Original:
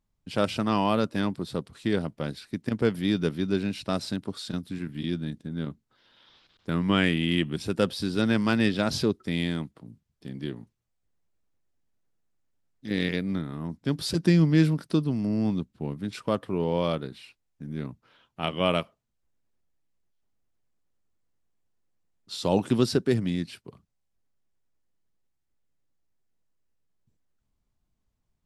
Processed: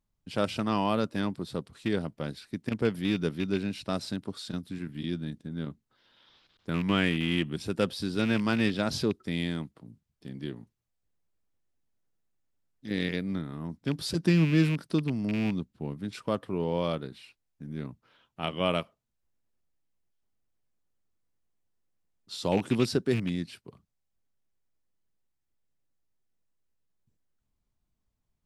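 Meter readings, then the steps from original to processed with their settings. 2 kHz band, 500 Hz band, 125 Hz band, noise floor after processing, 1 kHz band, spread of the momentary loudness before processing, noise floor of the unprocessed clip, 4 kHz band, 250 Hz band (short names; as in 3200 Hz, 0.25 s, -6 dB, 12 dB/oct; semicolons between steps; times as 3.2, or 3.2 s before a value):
-2.0 dB, -3.0 dB, -3.0 dB, -80 dBFS, -3.0 dB, 13 LU, -77 dBFS, -2.5 dB, -3.0 dB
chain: rattling part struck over -23 dBFS, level -23 dBFS; gain -3 dB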